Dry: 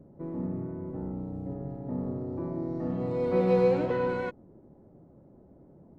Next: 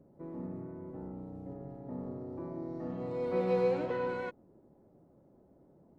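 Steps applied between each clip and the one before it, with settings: low shelf 260 Hz -7 dB; gain -4 dB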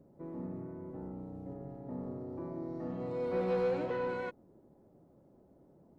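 soft clip -25 dBFS, distortion -17 dB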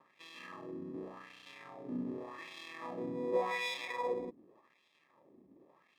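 sample-and-hold 30×; wah 0.87 Hz 260–3200 Hz, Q 2.2; gain +5.5 dB

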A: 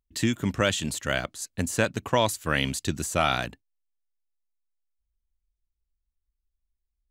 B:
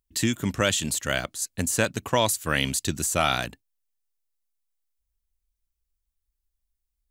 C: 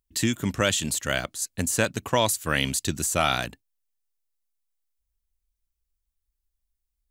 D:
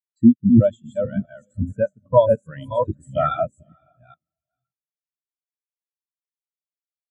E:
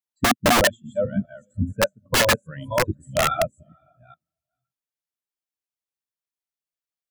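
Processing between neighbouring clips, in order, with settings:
high shelf 5500 Hz +9 dB
nothing audible
reverse delay 0.414 s, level -1 dB; diffused feedback echo 0.513 s, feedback 42%, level -8 dB; spectral expander 4:1; gain +1.5 dB
wrapped overs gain 12 dB

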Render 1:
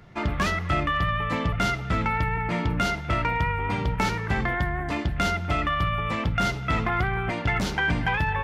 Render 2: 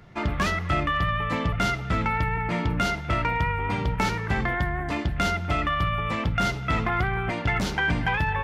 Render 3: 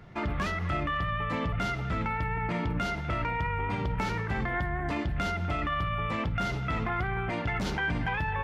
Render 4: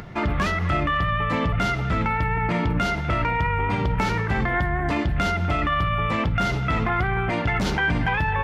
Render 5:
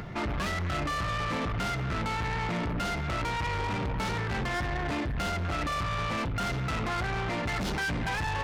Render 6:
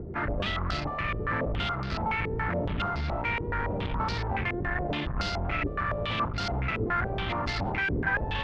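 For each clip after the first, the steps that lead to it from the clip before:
nothing audible
high shelf 4200 Hz -6 dB; limiter -22.5 dBFS, peak gain reduction 7 dB
upward compressor, threshold -41 dBFS; gain +7.5 dB
soft clip -28.5 dBFS, distortion -8 dB
octaver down 1 oct, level 0 dB; stepped low-pass 7.1 Hz 410–4700 Hz; gain -2.5 dB

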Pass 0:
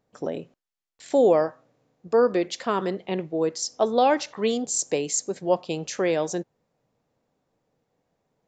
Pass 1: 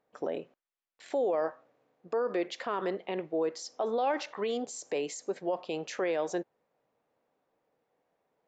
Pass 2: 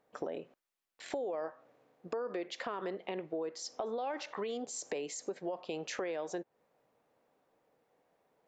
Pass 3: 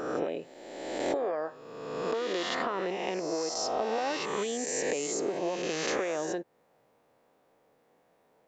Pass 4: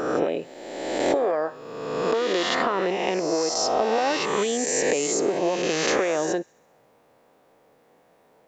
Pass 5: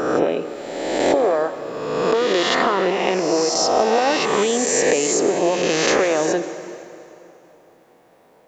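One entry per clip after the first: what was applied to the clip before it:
low shelf 220 Hz -7 dB; limiter -21 dBFS, peak gain reduction 11.5 dB; tone controls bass -9 dB, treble -13 dB
compressor 4:1, threshold -40 dBFS, peak gain reduction 12.5 dB; gain +3.5 dB
spectral swells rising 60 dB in 1.53 s; gain +3.5 dB
thin delay 66 ms, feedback 61%, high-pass 1800 Hz, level -23.5 dB; gain +8 dB
plate-style reverb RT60 2.9 s, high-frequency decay 0.8×, pre-delay 0.11 s, DRR 12 dB; gain +5 dB

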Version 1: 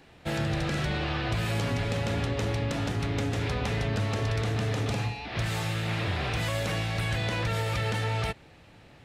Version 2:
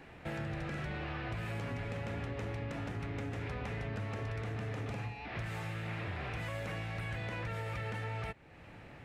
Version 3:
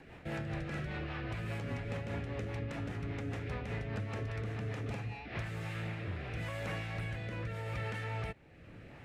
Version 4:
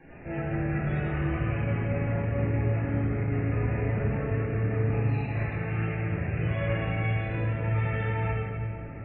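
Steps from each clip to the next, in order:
resonant high shelf 2900 Hz -6.5 dB, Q 1.5; compressor 2:1, threshold -48 dBFS, peak gain reduction 12.5 dB; gain +1.5 dB
rotary speaker horn 5 Hz, later 0.8 Hz, at 5.06; gain +2 dB
loudest bins only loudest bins 64; reverb RT60 2.7 s, pre-delay 6 ms, DRR -7.5 dB

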